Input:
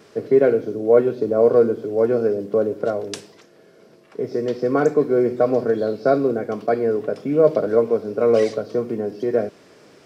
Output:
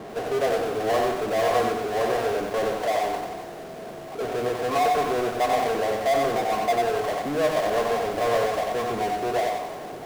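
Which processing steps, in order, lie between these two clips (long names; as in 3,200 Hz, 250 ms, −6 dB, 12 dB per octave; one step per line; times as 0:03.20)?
low-pass that shuts in the quiet parts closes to 310 Hz, open at −13 dBFS
formant resonators in series a
power curve on the samples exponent 0.35
feedback echo at a low word length 92 ms, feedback 35%, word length 8 bits, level −3 dB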